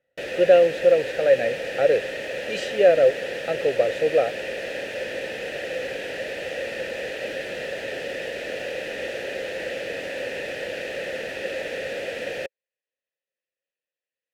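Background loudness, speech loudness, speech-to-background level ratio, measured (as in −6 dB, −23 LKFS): −30.0 LKFS, −20.5 LKFS, 9.5 dB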